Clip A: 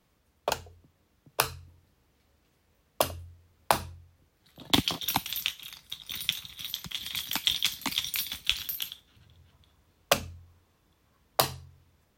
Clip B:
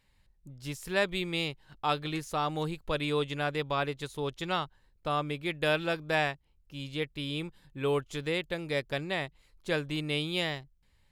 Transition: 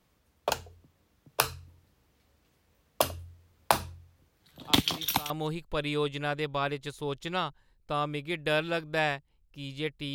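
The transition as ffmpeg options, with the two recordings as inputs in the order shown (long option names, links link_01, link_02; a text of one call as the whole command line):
ffmpeg -i cue0.wav -i cue1.wav -filter_complex "[1:a]asplit=2[link_01][link_02];[0:a]apad=whole_dur=10.14,atrim=end=10.14,atrim=end=5.302[link_03];[link_02]atrim=start=2.458:end=7.3[link_04];[link_01]atrim=start=1.68:end=2.46,asetpts=PTS-STARTPTS,volume=-12.5dB,afade=type=in:duration=0.004:curve=hsin,afade=type=out:start_time=0.776:duration=0.004:curve=hsin,adelay=4520[link_05];[link_03][link_04]acrossfade=duration=0.004:curve1=hsin:curve2=hsin[link_06];[link_06][link_05]amix=inputs=2:normalize=0" out.wav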